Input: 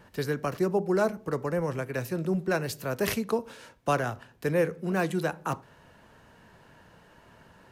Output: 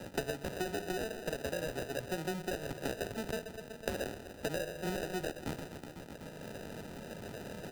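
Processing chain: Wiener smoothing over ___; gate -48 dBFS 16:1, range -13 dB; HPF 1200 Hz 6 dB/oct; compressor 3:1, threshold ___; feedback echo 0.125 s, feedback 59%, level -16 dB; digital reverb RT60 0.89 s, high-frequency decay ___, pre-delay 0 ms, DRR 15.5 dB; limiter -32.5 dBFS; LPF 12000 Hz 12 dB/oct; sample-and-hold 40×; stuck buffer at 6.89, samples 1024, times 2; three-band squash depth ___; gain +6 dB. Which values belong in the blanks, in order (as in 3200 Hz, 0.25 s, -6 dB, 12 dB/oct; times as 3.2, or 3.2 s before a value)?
25 samples, -38 dBFS, 0.4×, 100%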